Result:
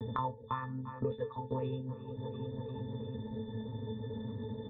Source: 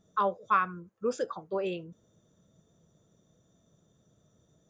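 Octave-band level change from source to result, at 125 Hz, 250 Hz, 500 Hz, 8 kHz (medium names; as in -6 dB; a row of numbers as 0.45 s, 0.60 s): +12.5 dB, +2.5 dB, -4.5 dB, under -25 dB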